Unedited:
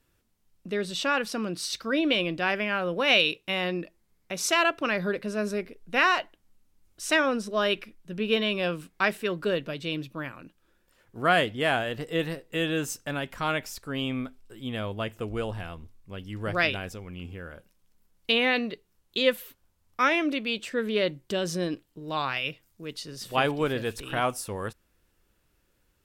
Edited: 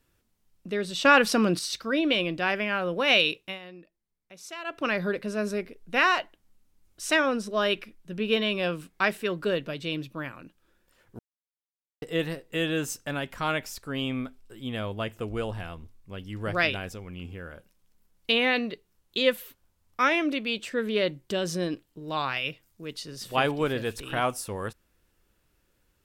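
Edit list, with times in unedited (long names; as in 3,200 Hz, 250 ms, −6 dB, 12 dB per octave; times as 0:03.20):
0:01.05–0:01.59: clip gain +8 dB
0:03.39–0:04.84: duck −16 dB, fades 0.20 s
0:11.19–0:12.02: silence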